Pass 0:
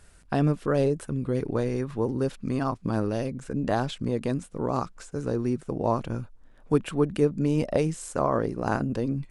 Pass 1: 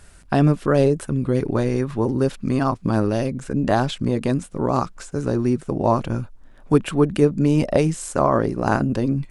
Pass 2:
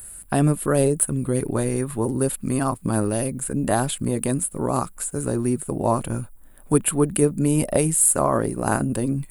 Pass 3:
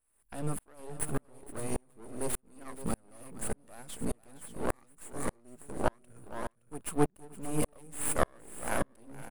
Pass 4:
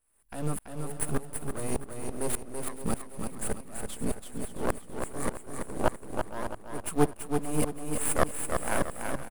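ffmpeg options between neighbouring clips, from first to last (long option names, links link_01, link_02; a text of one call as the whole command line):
ffmpeg -i in.wav -af "bandreject=frequency=470:width=12,volume=7dB" out.wav
ffmpeg -i in.wav -af "aexciter=amount=11.2:drive=9.2:freq=8600,volume=-2.5dB" out.wav
ffmpeg -i in.wav -af "aeval=exprs='max(val(0),0)':channel_layout=same,aecho=1:1:467|569:0.335|0.282,aeval=exprs='val(0)*pow(10,-40*if(lt(mod(-1.7*n/s,1),2*abs(-1.7)/1000),1-mod(-1.7*n/s,1)/(2*abs(-1.7)/1000),(mod(-1.7*n/s,1)-2*abs(-1.7)/1000)/(1-2*abs(-1.7)/1000))/20)':channel_layout=same" out.wav
ffmpeg -i in.wav -filter_complex "[0:a]asplit=2[link_01][link_02];[link_02]acrusher=bits=3:mode=log:mix=0:aa=0.000001,volume=-8.5dB[link_03];[link_01][link_03]amix=inputs=2:normalize=0,aecho=1:1:333|666|999|1332|1665:0.531|0.202|0.0767|0.0291|0.0111" out.wav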